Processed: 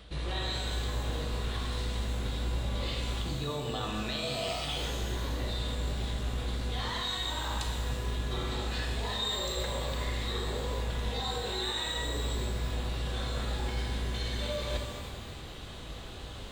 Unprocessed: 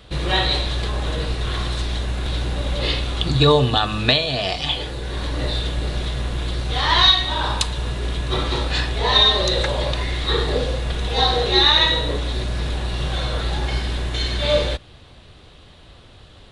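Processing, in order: limiter -14 dBFS, peak gain reduction 11 dB; reverse; compressor 16:1, threshold -33 dBFS, peak gain reduction 15.5 dB; reverse; shimmer reverb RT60 1.5 s, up +12 st, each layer -8 dB, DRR 1.5 dB

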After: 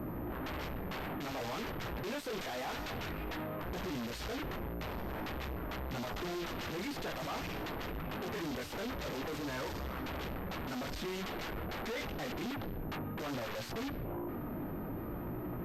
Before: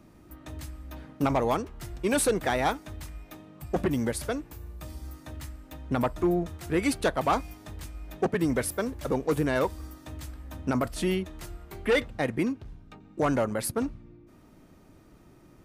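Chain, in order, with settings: notches 50/100 Hz; low-pass opened by the level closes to 1300 Hz, open at -22.5 dBFS; 2–3.6 low shelf 170 Hz -7.5 dB; in parallel at 0 dB: compressor, threshold -32 dBFS, peak gain reduction 12 dB; on the sum: chorus 0.52 Hz, delay 16.5 ms, depth 4.1 ms; tube stage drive 39 dB, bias 0.25; sine folder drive 13 dB, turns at -35.5 dBFS; pulse-width modulation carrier 13000 Hz; gain -1 dB

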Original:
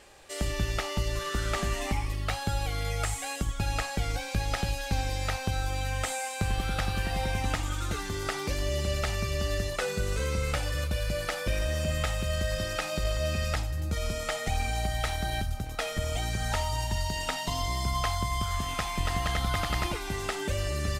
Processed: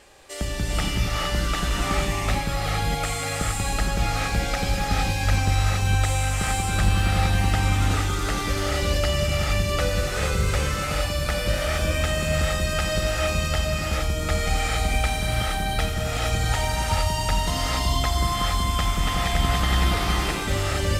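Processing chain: non-linear reverb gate 0.49 s rising, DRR -3.5 dB; gain +2 dB

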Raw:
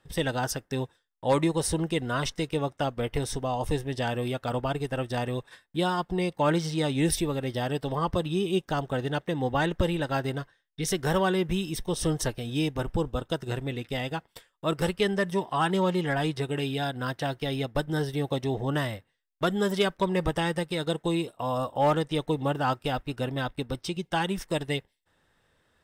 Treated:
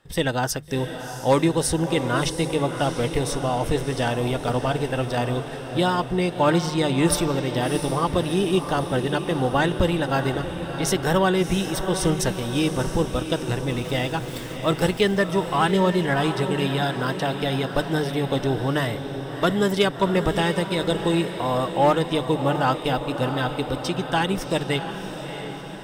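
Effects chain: 13.7–15.22 zero-crossing step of -41.5 dBFS; notches 50/100/150 Hz; diffused feedback echo 0.682 s, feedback 60%, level -9 dB; gain +5 dB

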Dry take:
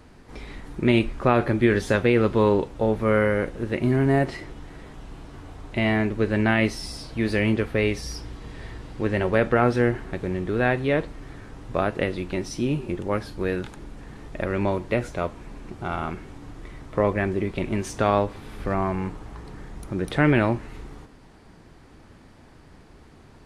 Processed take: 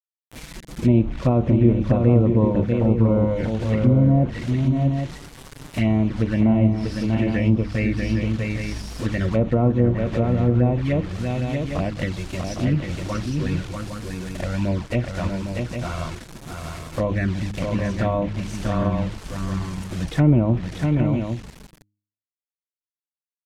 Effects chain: notch comb 410 Hz; bit-crush 6-bit; envelope flanger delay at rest 11.1 ms, full sweep at -19 dBFS; high shelf 4200 Hz +9 dB; de-hum 102.9 Hz, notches 3; on a send: tapped delay 0.641/0.808 s -5/-7.5 dB; on the sum: treble ducked by the level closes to 1100 Hz, closed at -17.5 dBFS; tone controls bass +8 dB, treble -2 dB

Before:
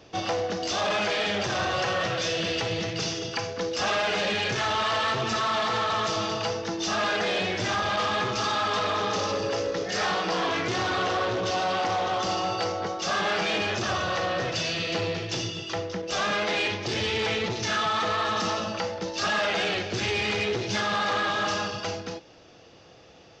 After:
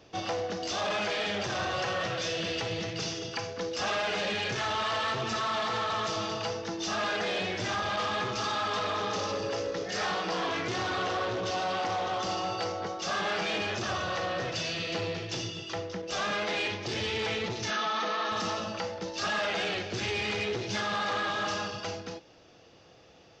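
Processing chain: 17.7–18.32 brick-wall FIR band-pass 170–6700 Hz; gain -4.5 dB

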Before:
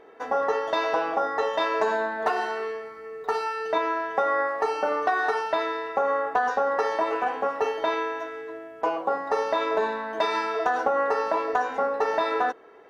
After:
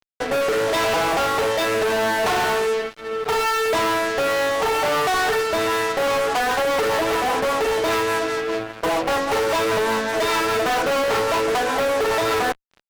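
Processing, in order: rotary speaker horn 0.75 Hz, later 5 Hz, at 5.38; fuzz box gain 40 dB, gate -44 dBFS; gain -5.5 dB

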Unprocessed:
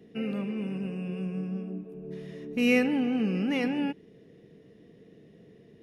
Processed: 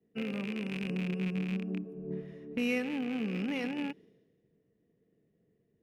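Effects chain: rattling part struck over -34 dBFS, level -25 dBFS; 0.89–2.21 dynamic EQ 250 Hz, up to +7 dB, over -46 dBFS, Q 0.72; compressor 4:1, threshold -32 dBFS, peak gain reduction 11.5 dB; three-band expander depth 100%

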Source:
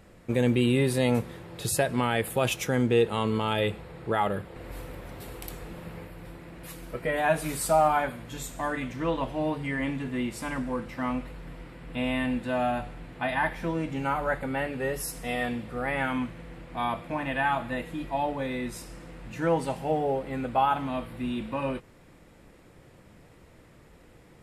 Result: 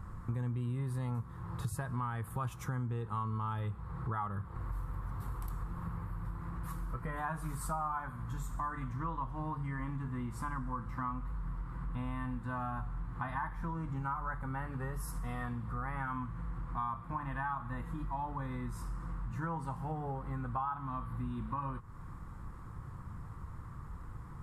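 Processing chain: EQ curve 110 Hz 0 dB, 280 Hz -15 dB, 620 Hz -23 dB, 1100 Hz +1 dB, 2500 Hz -26 dB, 8400 Hz -18 dB; compressor 4:1, threshold -50 dBFS, peak gain reduction 19 dB; gain +13 dB

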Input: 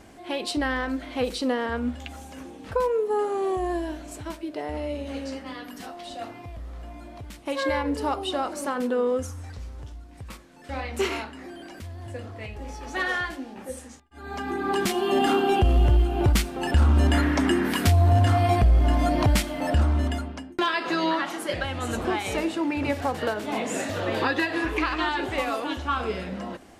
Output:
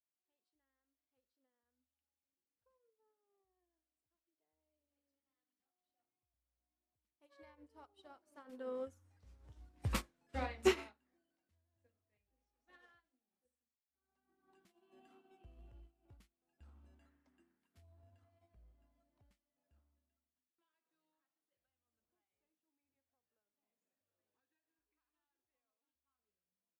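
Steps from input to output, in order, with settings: Doppler pass-by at 9.98, 12 m/s, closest 1.8 m; upward expander 2.5:1, over -60 dBFS; gain +10.5 dB

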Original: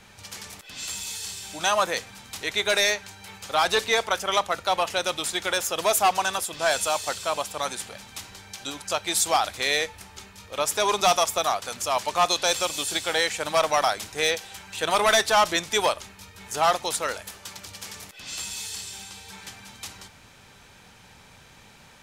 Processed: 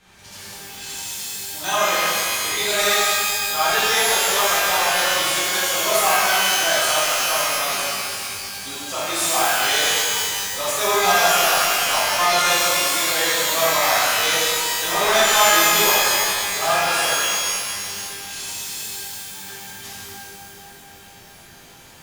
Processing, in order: shimmer reverb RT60 2.1 s, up +12 st, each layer -2 dB, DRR -10.5 dB; gain -8 dB

